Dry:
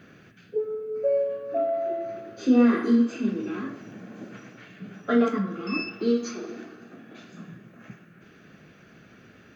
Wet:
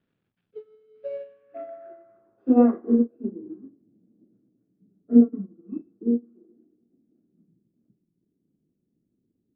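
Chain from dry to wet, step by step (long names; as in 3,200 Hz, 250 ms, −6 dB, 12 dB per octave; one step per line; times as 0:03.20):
slack as between gear wheels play −47.5 dBFS
low-pass filter sweep 3,400 Hz → 310 Hz, 0:01.09–0:03.59
expander for the loud parts 2.5 to 1, over −31 dBFS
level +3.5 dB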